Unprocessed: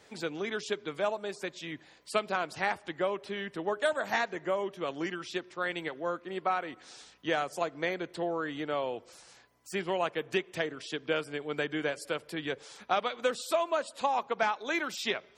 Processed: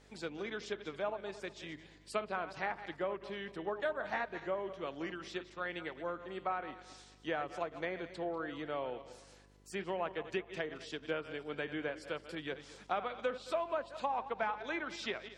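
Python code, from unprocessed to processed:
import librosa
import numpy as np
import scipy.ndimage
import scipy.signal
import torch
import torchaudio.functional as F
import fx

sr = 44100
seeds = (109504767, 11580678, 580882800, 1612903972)

y = fx.reverse_delay_fb(x, sr, ms=110, feedback_pct=54, wet_db=-12.5)
y = fx.dmg_buzz(y, sr, base_hz=50.0, harmonics=9, level_db=-58.0, tilt_db=-4, odd_only=False)
y = fx.env_lowpass_down(y, sr, base_hz=2300.0, full_db=-26.0)
y = y * 10.0 ** (-6.5 / 20.0)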